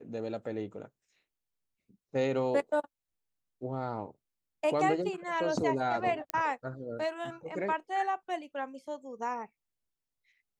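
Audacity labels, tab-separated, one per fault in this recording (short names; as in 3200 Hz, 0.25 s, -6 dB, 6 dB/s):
6.300000	6.300000	pop -15 dBFS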